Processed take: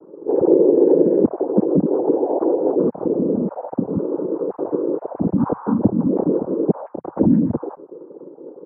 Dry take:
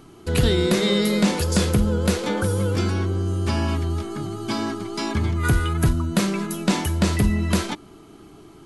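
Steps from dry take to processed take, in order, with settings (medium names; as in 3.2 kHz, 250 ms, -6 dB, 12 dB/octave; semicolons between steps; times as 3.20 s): formants replaced by sine waves; noise-vocoded speech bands 8; Bessel low-pass 500 Hz, order 6; compression 2:1, threshold -22 dBFS, peak gain reduction 6.5 dB; trim +8.5 dB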